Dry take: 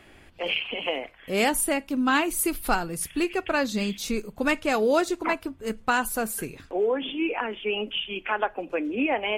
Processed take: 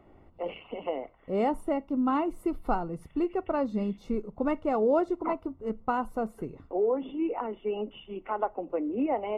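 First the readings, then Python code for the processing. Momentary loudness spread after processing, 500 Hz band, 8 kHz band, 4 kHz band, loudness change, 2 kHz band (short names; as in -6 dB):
9 LU, -2.0 dB, under -30 dB, under -20 dB, -4.0 dB, -17.0 dB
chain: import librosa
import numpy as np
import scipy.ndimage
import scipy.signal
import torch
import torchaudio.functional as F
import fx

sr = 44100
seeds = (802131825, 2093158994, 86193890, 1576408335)

y = scipy.signal.savgol_filter(x, 65, 4, mode='constant')
y = y * librosa.db_to_amplitude(-2.0)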